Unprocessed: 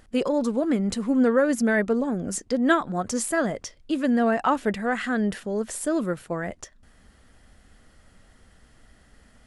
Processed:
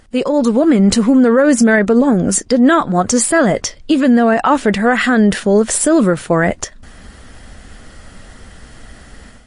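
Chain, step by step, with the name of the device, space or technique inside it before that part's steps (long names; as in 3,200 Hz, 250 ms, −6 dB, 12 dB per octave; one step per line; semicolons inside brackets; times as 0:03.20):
low-bitrate web radio (automatic gain control gain up to 11 dB; brickwall limiter −10 dBFS, peak gain reduction 8 dB; level +7 dB; MP3 40 kbit/s 24,000 Hz)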